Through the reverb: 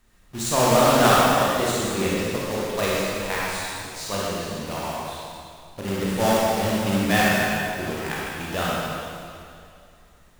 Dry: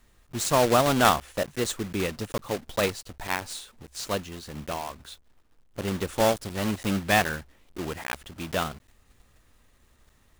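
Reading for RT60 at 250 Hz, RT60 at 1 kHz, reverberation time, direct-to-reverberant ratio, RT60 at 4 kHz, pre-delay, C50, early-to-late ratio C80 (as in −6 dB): 2.5 s, 2.5 s, 2.5 s, −7.0 dB, 2.3 s, 23 ms, −4.5 dB, −2.5 dB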